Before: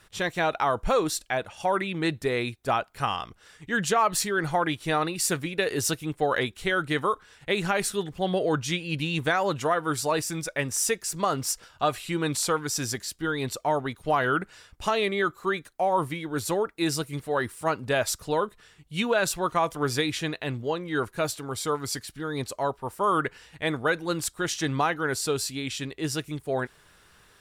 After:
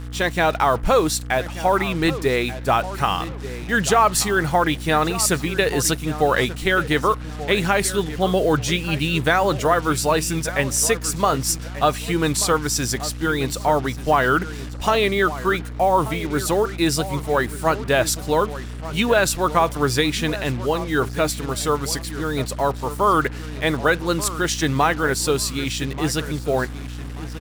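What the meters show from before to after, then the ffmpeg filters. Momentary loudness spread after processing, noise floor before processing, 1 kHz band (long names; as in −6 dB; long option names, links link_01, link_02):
6 LU, −58 dBFS, +6.5 dB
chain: -filter_complex "[0:a]asplit=2[link_01][link_02];[link_02]adelay=1184,lowpass=frequency=2600:poles=1,volume=-14dB,asplit=2[link_03][link_04];[link_04]adelay=1184,lowpass=frequency=2600:poles=1,volume=0.27,asplit=2[link_05][link_06];[link_06]adelay=1184,lowpass=frequency=2600:poles=1,volume=0.27[link_07];[link_01][link_03][link_05][link_07]amix=inputs=4:normalize=0,aeval=exprs='val(0)+0.0141*(sin(2*PI*60*n/s)+sin(2*PI*2*60*n/s)/2+sin(2*PI*3*60*n/s)/3+sin(2*PI*4*60*n/s)/4+sin(2*PI*5*60*n/s)/5)':channel_layout=same,acrusher=bits=6:mix=0:aa=0.5,volume=6.5dB"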